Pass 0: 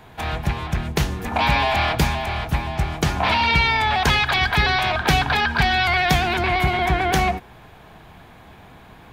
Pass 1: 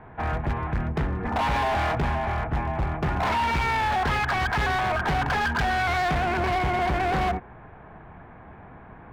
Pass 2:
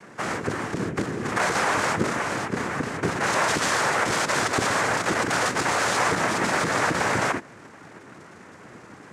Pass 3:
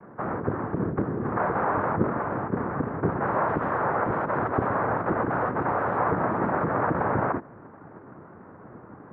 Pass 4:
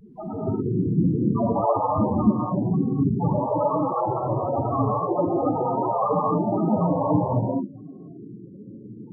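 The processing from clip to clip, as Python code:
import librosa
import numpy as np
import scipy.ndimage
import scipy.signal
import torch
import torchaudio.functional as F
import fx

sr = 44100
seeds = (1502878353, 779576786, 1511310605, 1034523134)

y1 = scipy.signal.sosfilt(scipy.signal.butter(4, 1900.0, 'lowpass', fs=sr, output='sos'), x)
y1 = np.clip(10.0 ** (21.5 / 20.0) * y1, -1.0, 1.0) / 10.0 ** (21.5 / 20.0)
y2 = fx.noise_vocoder(y1, sr, seeds[0], bands=3)
y2 = y2 * librosa.db_to_amplitude(1.5)
y3 = scipy.signal.sosfilt(scipy.signal.butter(4, 1300.0, 'lowpass', fs=sr, output='sos'), y2)
y3 = fx.low_shelf(y3, sr, hz=110.0, db=5.0)
y4 = fx.spec_topn(y3, sr, count=2)
y4 = fx.wow_flutter(y4, sr, seeds[1], rate_hz=2.1, depth_cents=100.0)
y4 = fx.rev_gated(y4, sr, seeds[2], gate_ms=290, shape='rising', drr_db=-4.0)
y4 = y4 * librosa.db_to_amplitude(8.5)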